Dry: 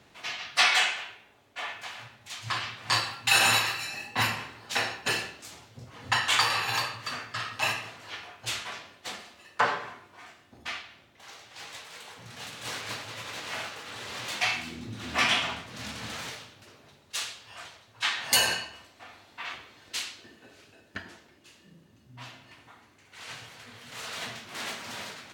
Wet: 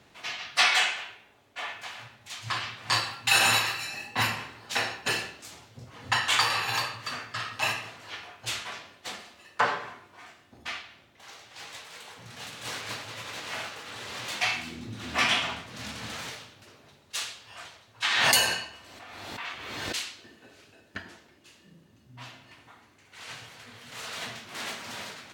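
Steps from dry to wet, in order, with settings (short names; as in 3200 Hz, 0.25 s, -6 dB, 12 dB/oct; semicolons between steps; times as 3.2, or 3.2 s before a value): 18.04–20.16 backwards sustainer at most 30 dB/s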